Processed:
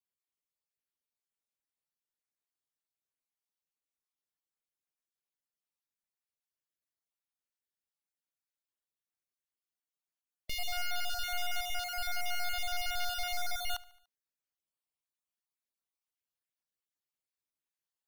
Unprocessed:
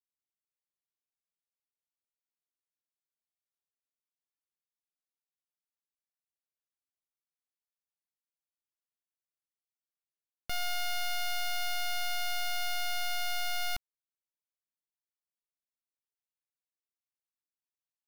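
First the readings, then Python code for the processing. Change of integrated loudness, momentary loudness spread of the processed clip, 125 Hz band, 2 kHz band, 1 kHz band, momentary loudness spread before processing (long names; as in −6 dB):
−2.0 dB, 4 LU, 0.0 dB, −2.0 dB, −1.5 dB, 3 LU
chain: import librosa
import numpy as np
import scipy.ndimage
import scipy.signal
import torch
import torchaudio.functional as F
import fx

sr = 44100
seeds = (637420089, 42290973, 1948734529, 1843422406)

y = fx.spec_dropout(x, sr, seeds[0], share_pct=31)
y = fx.rider(y, sr, range_db=3, speed_s=2.0)
y = fx.echo_feedback(y, sr, ms=73, feedback_pct=55, wet_db=-21.5)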